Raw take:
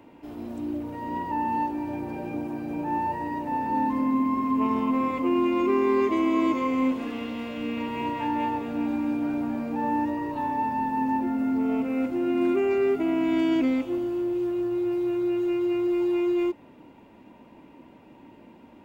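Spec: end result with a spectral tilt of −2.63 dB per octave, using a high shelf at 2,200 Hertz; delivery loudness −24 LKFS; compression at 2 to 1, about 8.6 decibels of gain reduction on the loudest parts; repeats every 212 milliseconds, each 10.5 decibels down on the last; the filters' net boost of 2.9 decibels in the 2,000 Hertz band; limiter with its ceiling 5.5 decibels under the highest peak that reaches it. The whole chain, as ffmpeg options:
ffmpeg -i in.wav -af "equalizer=frequency=2000:width_type=o:gain=7.5,highshelf=frequency=2200:gain=-7.5,acompressor=threshold=-36dB:ratio=2,alimiter=level_in=3.5dB:limit=-24dB:level=0:latency=1,volume=-3.5dB,aecho=1:1:212|424|636:0.299|0.0896|0.0269,volume=11dB" out.wav

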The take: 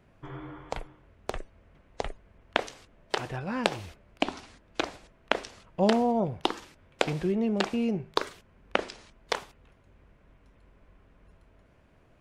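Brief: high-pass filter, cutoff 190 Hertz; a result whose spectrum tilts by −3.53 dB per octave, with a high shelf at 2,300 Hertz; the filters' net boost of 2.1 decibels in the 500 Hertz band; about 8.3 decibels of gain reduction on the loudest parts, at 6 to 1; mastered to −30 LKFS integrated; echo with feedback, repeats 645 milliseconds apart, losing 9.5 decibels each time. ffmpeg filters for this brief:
ffmpeg -i in.wav -af "highpass=190,equalizer=frequency=500:width_type=o:gain=3,highshelf=frequency=2300:gain=-5.5,acompressor=threshold=-31dB:ratio=6,aecho=1:1:645|1290|1935|2580:0.335|0.111|0.0365|0.012,volume=9.5dB" out.wav

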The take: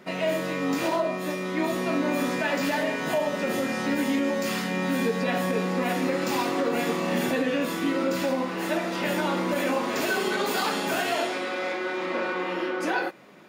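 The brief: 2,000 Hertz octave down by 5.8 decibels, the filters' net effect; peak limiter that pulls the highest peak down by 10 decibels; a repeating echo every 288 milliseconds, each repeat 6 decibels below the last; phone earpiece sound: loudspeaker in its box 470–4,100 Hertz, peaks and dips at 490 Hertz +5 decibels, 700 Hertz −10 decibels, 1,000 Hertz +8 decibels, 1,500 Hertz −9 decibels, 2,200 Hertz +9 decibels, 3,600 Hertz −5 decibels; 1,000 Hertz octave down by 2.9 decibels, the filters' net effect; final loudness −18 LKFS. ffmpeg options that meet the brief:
ffmpeg -i in.wav -af "equalizer=frequency=1000:width_type=o:gain=-3,equalizer=frequency=2000:width_type=o:gain=-8,alimiter=level_in=1.5dB:limit=-24dB:level=0:latency=1,volume=-1.5dB,highpass=470,equalizer=frequency=490:width_type=q:width=4:gain=5,equalizer=frequency=700:width_type=q:width=4:gain=-10,equalizer=frequency=1000:width_type=q:width=4:gain=8,equalizer=frequency=1500:width_type=q:width=4:gain=-9,equalizer=frequency=2200:width_type=q:width=4:gain=9,equalizer=frequency=3600:width_type=q:width=4:gain=-5,lowpass=frequency=4100:width=0.5412,lowpass=frequency=4100:width=1.3066,aecho=1:1:288|576|864|1152|1440|1728:0.501|0.251|0.125|0.0626|0.0313|0.0157,volume=17.5dB" out.wav

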